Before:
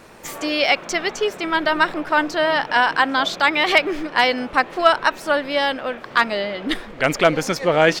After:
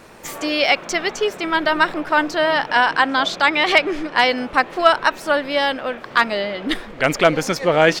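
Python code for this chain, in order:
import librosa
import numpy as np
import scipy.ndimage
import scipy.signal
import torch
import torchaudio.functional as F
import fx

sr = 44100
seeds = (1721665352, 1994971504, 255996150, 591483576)

y = fx.lowpass(x, sr, hz=11000.0, slope=12, at=(2.72, 4.28))
y = F.gain(torch.from_numpy(y), 1.0).numpy()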